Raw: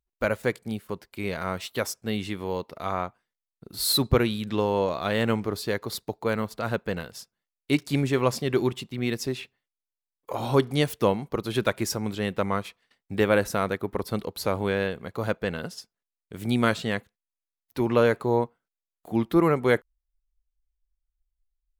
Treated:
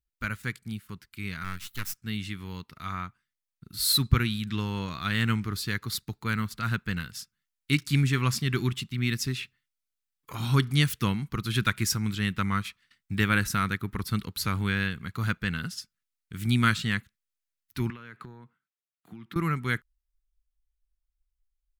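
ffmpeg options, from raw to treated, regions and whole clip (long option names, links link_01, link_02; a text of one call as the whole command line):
ffmpeg -i in.wav -filter_complex "[0:a]asettb=1/sr,asplit=3[link_01][link_02][link_03];[link_01]atrim=end=1.444[link_04];[link_02]atrim=start=1.44:end=1.98,asetpts=PTS-STARTPTS,afade=type=in:duration=0.004:curve=qsin,afade=type=out:start_time=0.536:duration=0.004:curve=qsin,aeval=exprs='max(val(0),0)':channel_layout=same,highshelf=frequency=12000:gain=11.5[link_05];[link_03]atrim=start=1.976[link_06];[link_04][link_05]acrossfade=duration=0.004:curve1=hsin:curve2=qsin[link_07];[link_07][link_06]acrossfade=duration=0.004:curve1=qsin:curve2=hsin,asettb=1/sr,asplit=3[link_08][link_09][link_10];[link_08]atrim=end=17.904[link_11];[link_09]atrim=start=17.9:end=19.36,asetpts=PTS-STARTPTS,afade=type=in:duration=0.004:curve=qsin,afade=type=out:start_time=1.456:duration=0.004:curve=qsin,highpass=frequency=110:width=0.5412,highpass=frequency=110:width=1.3066,bass=frequency=250:gain=-4,treble=frequency=4000:gain=-11,acompressor=threshold=-33dB:ratio=16:attack=3.2:release=140:knee=1:detection=peak[link_12];[link_10]atrim=start=19.356[link_13];[link_11][link_12]acrossfade=duration=0.004:curve1=hsin:curve2=qsin[link_14];[link_14][link_13]acrossfade=duration=0.004:curve1=qsin:curve2=hsin,firequalizer=gain_entry='entry(140,0);entry(550,-26);entry(1300,-2)':delay=0.05:min_phase=1,dynaudnorm=framelen=490:gausssize=17:maxgain=5dB" out.wav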